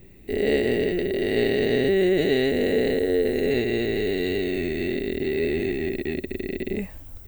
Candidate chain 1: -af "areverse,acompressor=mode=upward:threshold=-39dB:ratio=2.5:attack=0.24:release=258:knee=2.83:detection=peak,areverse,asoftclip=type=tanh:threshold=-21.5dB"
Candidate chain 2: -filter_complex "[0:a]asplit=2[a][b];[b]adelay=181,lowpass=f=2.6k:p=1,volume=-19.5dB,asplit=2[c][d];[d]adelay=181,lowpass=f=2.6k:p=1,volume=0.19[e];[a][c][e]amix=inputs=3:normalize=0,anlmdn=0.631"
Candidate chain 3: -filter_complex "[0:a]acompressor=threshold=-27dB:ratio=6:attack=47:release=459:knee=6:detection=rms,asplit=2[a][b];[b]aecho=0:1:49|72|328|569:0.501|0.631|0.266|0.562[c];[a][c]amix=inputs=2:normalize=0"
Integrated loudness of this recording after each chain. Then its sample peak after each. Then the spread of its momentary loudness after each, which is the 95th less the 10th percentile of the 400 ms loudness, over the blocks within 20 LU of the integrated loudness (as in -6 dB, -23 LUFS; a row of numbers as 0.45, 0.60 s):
-27.5, -24.0, -27.5 LUFS; -21.5, -10.0, -14.0 dBFS; 7, 9, 4 LU